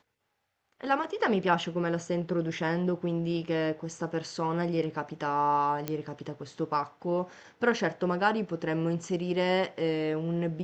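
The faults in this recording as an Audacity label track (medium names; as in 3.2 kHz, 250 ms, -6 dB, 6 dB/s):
5.880000	5.880000	pop -16 dBFS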